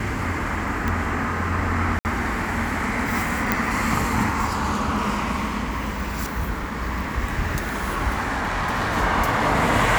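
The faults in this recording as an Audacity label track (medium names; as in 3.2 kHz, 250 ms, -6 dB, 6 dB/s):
0.880000	0.880000	pop
1.990000	2.050000	dropout 59 ms
3.520000	3.520000	pop -4 dBFS
8.280000	8.970000	clipped -20 dBFS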